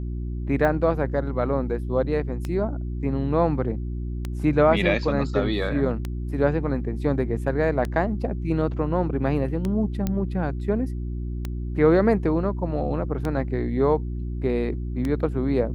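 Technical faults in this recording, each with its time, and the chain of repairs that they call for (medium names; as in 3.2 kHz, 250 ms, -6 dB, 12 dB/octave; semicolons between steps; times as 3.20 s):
hum 60 Hz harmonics 6 -29 dBFS
tick 33 1/3 rpm -15 dBFS
10.07 s: pop -12 dBFS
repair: de-click; de-hum 60 Hz, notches 6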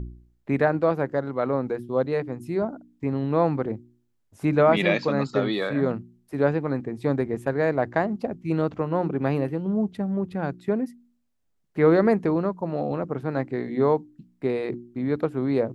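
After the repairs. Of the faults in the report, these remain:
nothing left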